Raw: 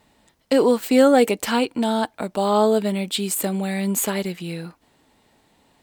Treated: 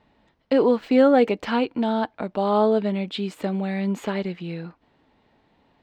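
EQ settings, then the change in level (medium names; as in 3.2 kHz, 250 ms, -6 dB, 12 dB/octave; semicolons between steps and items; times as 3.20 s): distance through air 240 m; -1.0 dB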